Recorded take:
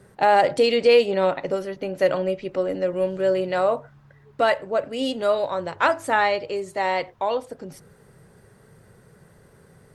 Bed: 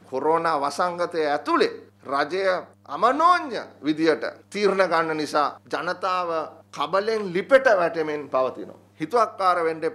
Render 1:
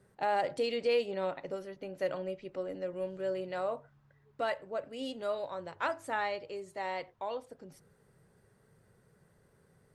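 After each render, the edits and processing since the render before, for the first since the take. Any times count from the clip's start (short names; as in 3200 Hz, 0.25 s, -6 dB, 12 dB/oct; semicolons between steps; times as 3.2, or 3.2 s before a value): gain -13.5 dB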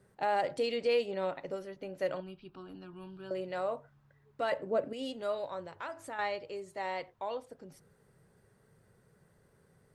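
2.2–3.31 fixed phaser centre 2000 Hz, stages 6; 4.52–4.93 bell 270 Hz +12 dB 2.3 oct; 5.62–6.19 compressor 2:1, threshold -42 dBFS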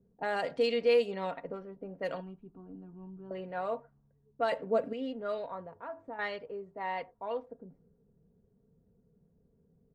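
low-pass opened by the level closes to 320 Hz, open at -27 dBFS; comb 4.3 ms, depth 56%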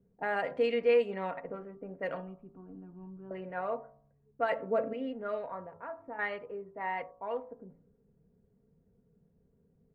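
resonant high shelf 3000 Hz -10.5 dB, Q 1.5; de-hum 55.94 Hz, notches 24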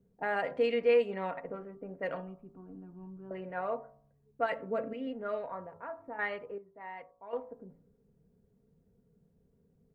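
4.46–5.07 bell 680 Hz -5 dB 1.6 oct; 6.58–7.33 gain -9.5 dB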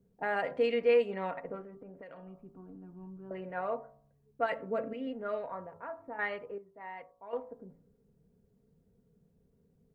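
1.61–2.98 compressor 20:1, threshold -44 dBFS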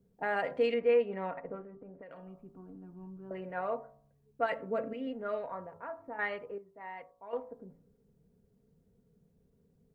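0.74–2.11 air absorption 330 m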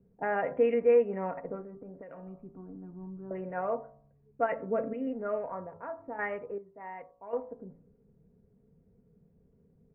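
steep low-pass 2600 Hz 48 dB/oct; tilt shelf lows +4.5 dB, about 1400 Hz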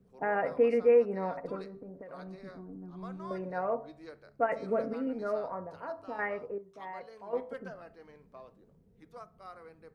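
add bed -28.5 dB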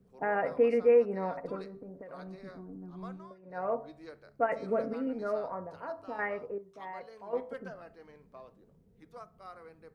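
3.08–3.69 dip -20.5 dB, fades 0.27 s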